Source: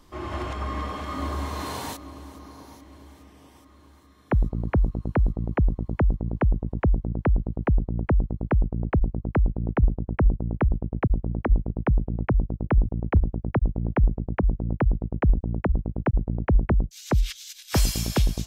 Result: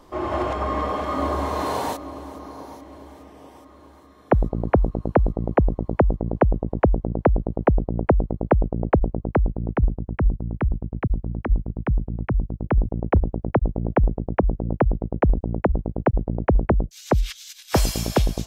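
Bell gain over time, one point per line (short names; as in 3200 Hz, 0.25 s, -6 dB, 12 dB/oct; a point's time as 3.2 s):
bell 600 Hz 2.1 oct
9.08 s +12 dB
9.57 s +4.5 dB
10.27 s -2.5 dB
12.44 s -2.5 dB
12.98 s +9 dB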